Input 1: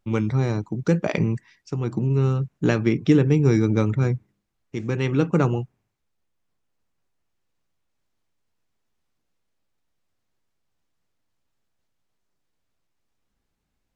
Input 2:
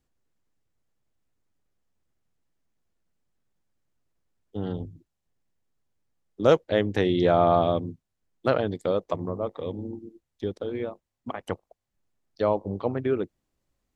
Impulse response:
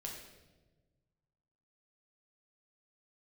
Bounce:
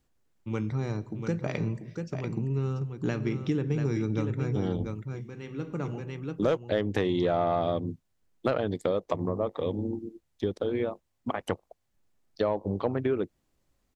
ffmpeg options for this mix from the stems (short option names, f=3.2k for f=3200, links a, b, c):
-filter_complex "[0:a]adelay=400,volume=-9dB,asplit=3[a][b][c];[b]volume=-11.5dB[d];[c]volume=-6.5dB[e];[1:a]aeval=exprs='0.501*(cos(1*acos(clip(val(0)/0.501,-1,1)))-cos(1*PI/2))+0.0316*(cos(5*acos(clip(val(0)/0.501,-1,1)))-cos(5*PI/2))':c=same,volume=1.5dB,asplit=2[f][g];[g]apad=whole_len=632995[h];[a][h]sidechaincompress=threshold=-44dB:ratio=4:attack=16:release=1130[i];[2:a]atrim=start_sample=2205[j];[d][j]afir=irnorm=-1:irlink=0[k];[e]aecho=0:1:689:1[l];[i][f][k][l]amix=inputs=4:normalize=0,acompressor=threshold=-24dB:ratio=4"